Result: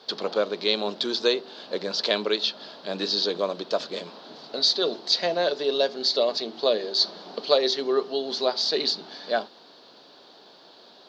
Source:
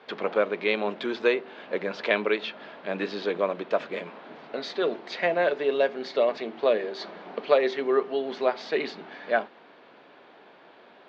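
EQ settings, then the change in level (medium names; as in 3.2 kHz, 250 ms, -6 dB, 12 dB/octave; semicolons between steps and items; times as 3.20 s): resonant high shelf 3.2 kHz +12.5 dB, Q 3; 0.0 dB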